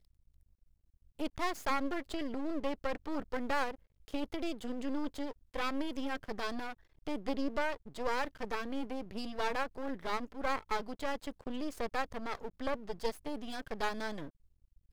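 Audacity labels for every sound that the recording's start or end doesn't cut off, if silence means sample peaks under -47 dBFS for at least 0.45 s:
1.190000	14.290000	sound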